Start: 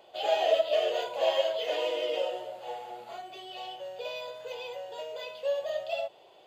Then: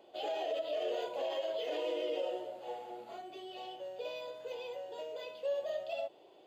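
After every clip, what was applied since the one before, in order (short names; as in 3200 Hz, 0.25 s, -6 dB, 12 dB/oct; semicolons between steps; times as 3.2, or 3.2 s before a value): limiter -24 dBFS, peak gain reduction 10 dB; bell 300 Hz +12.5 dB 1.2 oct; gain -7.5 dB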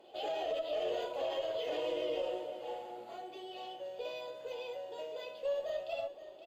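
pre-echo 0.111 s -22 dB; added harmonics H 2 -24 dB, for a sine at -26 dBFS; echo 0.523 s -13 dB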